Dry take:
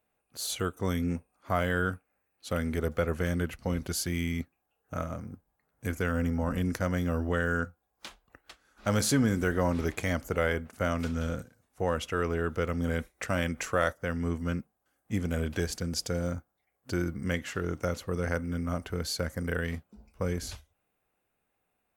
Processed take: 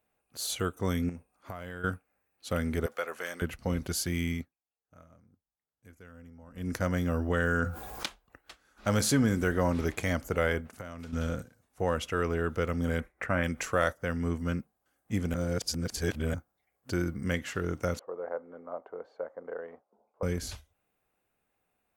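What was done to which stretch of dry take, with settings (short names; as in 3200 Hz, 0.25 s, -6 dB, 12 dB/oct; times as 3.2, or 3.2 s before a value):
1.09–1.84 compressor 12:1, threshold -35 dBFS
2.86–3.42 HPF 680 Hz
4.32–6.76 dip -22 dB, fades 0.22 s
7.3–8.06 fast leveller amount 70%
10.6–11.13 compressor 10:1, threshold -37 dBFS
13–13.44 resonant high shelf 2800 Hz -12.5 dB, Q 1.5
15.34–16.34 reverse
17.99–20.23 Butterworth band-pass 680 Hz, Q 1.2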